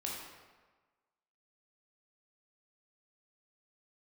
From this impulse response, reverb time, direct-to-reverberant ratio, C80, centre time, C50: 1.3 s, -3.5 dB, 3.0 dB, 73 ms, 0.5 dB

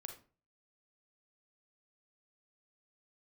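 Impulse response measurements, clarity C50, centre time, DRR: 7.5 dB, 17 ms, 4.0 dB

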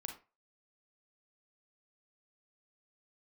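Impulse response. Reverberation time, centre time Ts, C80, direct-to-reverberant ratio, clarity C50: 0.30 s, 19 ms, 14.5 dB, 3.0 dB, 7.5 dB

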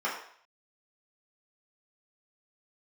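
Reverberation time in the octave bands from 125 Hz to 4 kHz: 0.40 s, 0.45 s, 0.55 s, 0.60 s, 0.60 s, 0.55 s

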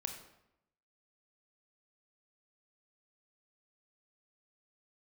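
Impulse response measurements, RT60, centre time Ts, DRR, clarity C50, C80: 0.85 s, 22 ms, 4.5 dB, 7.0 dB, 9.5 dB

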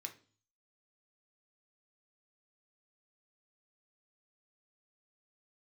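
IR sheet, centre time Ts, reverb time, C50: 10 ms, 0.40 s, 14.0 dB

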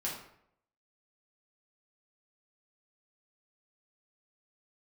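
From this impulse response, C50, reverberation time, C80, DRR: 4.0 dB, 0.70 s, 7.5 dB, -5.0 dB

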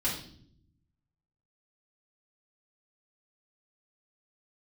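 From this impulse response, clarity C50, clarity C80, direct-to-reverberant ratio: 5.5 dB, 9.5 dB, -8.0 dB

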